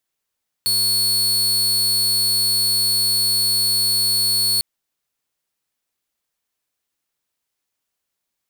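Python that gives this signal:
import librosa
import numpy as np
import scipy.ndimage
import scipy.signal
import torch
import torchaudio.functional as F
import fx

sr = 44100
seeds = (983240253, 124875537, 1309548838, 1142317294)

y = 10.0 ** (-13.5 / 20.0) * (2.0 * np.mod(4400.0 * (np.arange(round(3.95 * sr)) / sr), 1.0) - 1.0)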